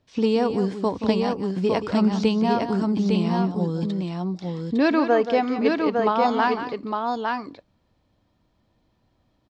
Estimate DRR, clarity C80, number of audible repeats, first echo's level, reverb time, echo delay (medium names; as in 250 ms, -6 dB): no reverb, no reverb, 2, -10.5 dB, no reverb, 178 ms